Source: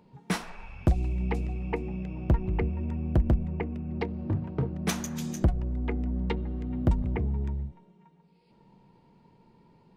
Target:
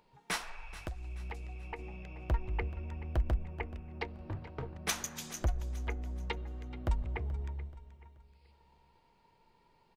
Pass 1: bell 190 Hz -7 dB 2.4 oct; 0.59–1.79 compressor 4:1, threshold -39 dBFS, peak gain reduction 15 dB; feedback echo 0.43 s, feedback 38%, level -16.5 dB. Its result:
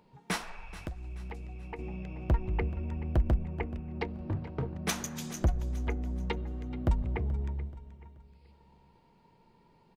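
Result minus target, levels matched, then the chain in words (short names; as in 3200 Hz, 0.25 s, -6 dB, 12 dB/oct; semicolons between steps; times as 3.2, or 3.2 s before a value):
250 Hz band +5.0 dB
bell 190 Hz -18 dB 2.4 oct; 0.59–1.79 compressor 4:1, threshold -39 dBFS, peak gain reduction 12.5 dB; feedback echo 0.43 s, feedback 38%, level -16.5 dB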